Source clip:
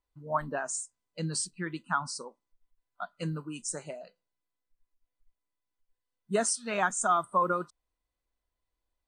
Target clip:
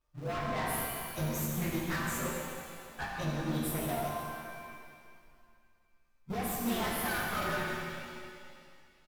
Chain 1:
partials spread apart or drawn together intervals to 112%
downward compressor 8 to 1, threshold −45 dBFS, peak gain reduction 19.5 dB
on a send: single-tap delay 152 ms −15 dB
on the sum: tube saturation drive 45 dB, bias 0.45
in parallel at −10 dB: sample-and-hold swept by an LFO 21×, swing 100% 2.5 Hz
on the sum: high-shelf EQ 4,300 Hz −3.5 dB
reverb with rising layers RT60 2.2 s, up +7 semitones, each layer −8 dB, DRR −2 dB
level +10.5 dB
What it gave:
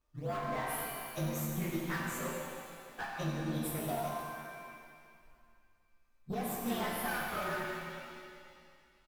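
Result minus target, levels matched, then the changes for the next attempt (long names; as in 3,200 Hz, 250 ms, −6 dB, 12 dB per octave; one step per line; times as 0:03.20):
sample-and-hold swept by an LFO: distortion −14 dB; downward compressor: peak gain reduction +8 dB
change: downward compressor 8 to 1, threshold −36 dBFS, peak gain reduction 12 dB
change: sample-and-hold swept by an LFO 75×, swing 100% 2.5 Hz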